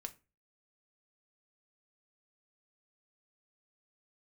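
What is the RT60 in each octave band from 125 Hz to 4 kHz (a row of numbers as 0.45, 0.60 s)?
0.45, 0.35, 0.30, 0.25, 0.25, 0.20 s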